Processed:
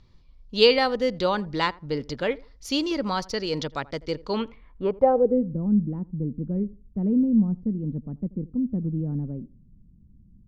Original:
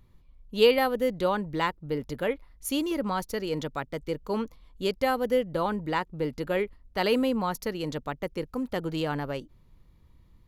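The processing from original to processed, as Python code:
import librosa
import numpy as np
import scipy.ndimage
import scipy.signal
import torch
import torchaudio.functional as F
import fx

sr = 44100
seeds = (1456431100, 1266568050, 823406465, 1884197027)

y = (np.kron(scipy.signal.resample_poly(x, 1, 2), np.eye(2)[0]) * 2)[:len(x)]
y = fx.filter_sweep_lowpass(y, sr, from_hz=5000.0, to_hz=210.0, start_s=4.24, end_s=5.54, q=3.4)
y = fx.echo_tape(y, sr, ms=83, feedback_pct=24, wet_db=-20.0, lp_hz=1100.0, drive_db=8.0, wow_cents=9)
y = F.gain(torch.from_numpy(y), 2.0).numpy()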